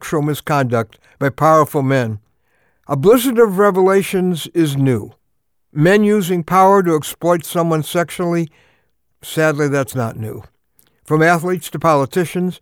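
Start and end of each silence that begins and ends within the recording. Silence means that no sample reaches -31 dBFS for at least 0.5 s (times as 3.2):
2.17–2.89
5.09–5.75
8.46–9.23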